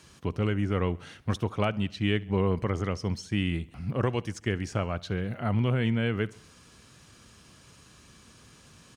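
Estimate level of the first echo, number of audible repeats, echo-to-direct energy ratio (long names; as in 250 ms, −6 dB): −23.0 dB, 3, −21.5 dB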